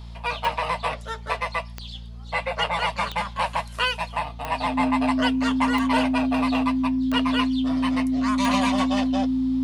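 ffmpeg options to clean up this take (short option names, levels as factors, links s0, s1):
-af "adeclick=t=4,bandreject=f=57.8:t=h:w=4,bandreject=f=115.6:t=h:w=4,bandreject=f=173.4:t=h:w=4,bandreject=f=231.2:t=h:w=4,bandreject=f=260:w=30"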